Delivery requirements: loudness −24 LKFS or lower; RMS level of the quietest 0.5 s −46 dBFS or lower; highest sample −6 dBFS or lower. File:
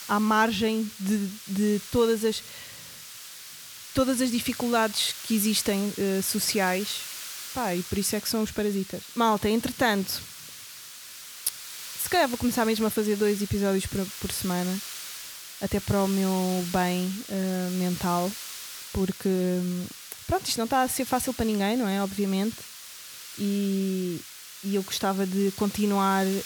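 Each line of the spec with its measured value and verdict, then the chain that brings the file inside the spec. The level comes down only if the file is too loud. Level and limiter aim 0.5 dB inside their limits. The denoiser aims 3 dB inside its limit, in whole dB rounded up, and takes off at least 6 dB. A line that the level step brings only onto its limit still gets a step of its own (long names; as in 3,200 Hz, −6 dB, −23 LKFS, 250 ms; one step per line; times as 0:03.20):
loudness −26.5 LKFS: in spec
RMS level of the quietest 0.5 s −44 dBFS: out of spec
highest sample −7.5 dBFS: in spec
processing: broadband denoise 6 dB, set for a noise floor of −44 dBFS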